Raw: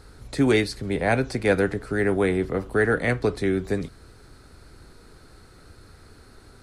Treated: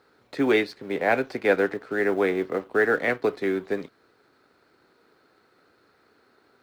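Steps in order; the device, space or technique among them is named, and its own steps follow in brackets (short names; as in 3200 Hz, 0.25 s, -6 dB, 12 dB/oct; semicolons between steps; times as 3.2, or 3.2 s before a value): phone line with mismatched companding (BPF 310–3400 Hz; G.711 law mismatch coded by A); gain +1.5 dB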